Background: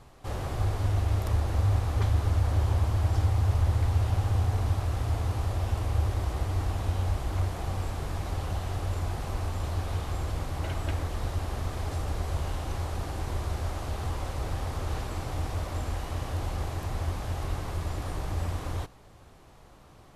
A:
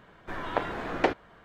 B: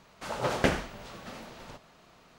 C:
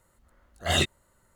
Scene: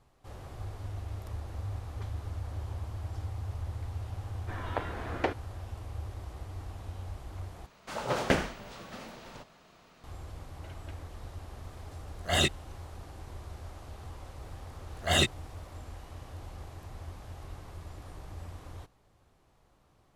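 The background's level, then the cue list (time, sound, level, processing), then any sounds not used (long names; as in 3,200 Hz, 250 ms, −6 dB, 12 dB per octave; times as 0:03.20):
background −12.5 dB
0:04.20: mix in A −5.5 dB
0:07.66: overwrite with B −1 dB
0:11.63: mix in C −2 dB
0:14.41: mix in C −1 dB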